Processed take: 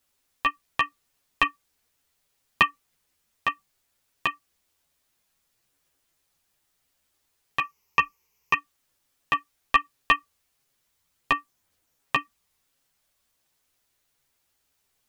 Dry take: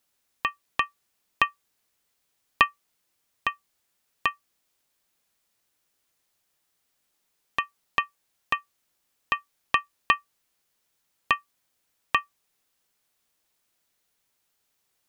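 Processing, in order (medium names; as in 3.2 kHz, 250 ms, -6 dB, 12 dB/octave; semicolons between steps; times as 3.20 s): octave divider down 2 oct, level -1 dB; 7.59–8.54 s: rippled EQ curve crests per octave 0.79, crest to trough 12 dB; chorus voices 6, 0.71 Hz, delay 11 ms, depth 3.8 ms; trim +4.5 dB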